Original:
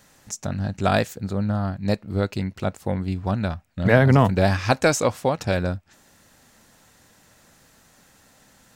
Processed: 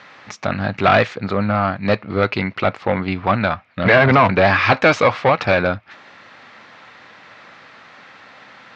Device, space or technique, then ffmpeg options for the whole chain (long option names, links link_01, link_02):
overdrive pedal into a guitar cabinet: -filter_complex "[0:a]asplit=2[link_01][link_02];[link_02]highpass=frequency=720:poles=1,volume=24dB,asoftclip=type=tanh:threshold=-2dB[link_03];[link_01][link_03]amix=inputs=2:normalize=0,lowpass=frequency=3600:poles=1,volume=-6dB,highpass=84,equalizer=frequency=110:width_type=q:width=4:gain=5,equalizer=frequency=1200:width_type=q:width=4:gain=6,equalizer=frequency=2200:width_type=q:width=4:gain=6,lowpass=frequency=4200:width=0.5412,lowpass=frequency=4200:width=1.3066,volume=-2.5dB"